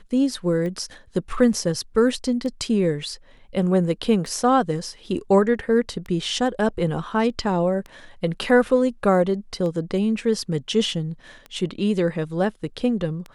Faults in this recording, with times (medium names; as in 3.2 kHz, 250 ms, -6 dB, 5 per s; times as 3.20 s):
tick 33 1/3 rpm -21 dBFS